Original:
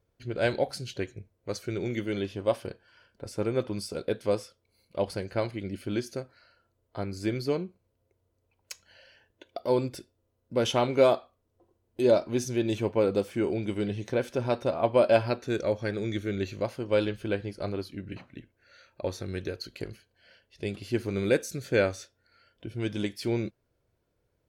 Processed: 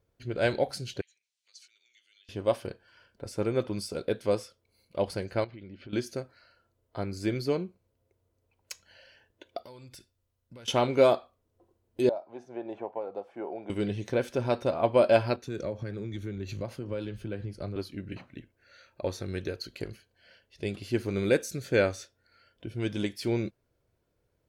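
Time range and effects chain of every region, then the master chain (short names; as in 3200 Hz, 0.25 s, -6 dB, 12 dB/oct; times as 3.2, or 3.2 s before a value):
1.01–2.29 compressor 12:1, threshold -42 dBFS + Butterworth band-pass 5000 Hz, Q 0.97 + mismatched tape noise reduction encoder only
5.44–5.93 LPF 4200 Hz 24 dB/oct + compressor, threshold -42 dBFS
9.63–10.68 bell 390 Hz -12 dB 2.6 oct + compressor 16:1, threshold -44 dBFS
12.09–13.7 band-pass 770 Hz, Q 4 + three-band squash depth 100%
15.36–17.76 low shelf 230 Hz +9 dB + compressor 12:1, threshold -30 dBFS + three-band expander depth 100%
whole clip: dry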